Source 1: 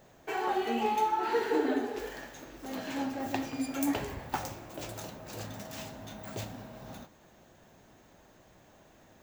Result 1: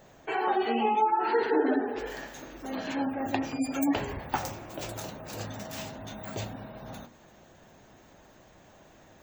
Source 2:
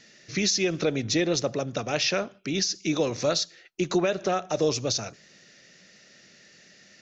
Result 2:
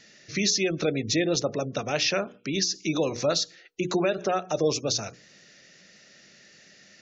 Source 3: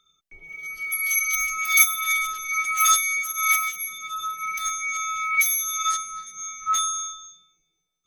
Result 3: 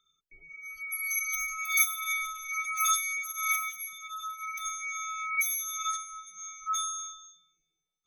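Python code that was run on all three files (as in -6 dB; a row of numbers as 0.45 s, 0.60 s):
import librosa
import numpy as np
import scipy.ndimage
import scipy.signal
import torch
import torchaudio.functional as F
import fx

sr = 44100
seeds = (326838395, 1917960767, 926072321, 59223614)

y = fx.spec_gate(x, sr, threshold_db=-30, keep='strong')
y = fx.hum_notches(y, sr, base_hz=60, count=8)
y = librosa.util.normalize(y) * 10.0 ** (-12 / 20.0)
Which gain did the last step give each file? +4.0 dB, +0.5 dB, -8.0 dB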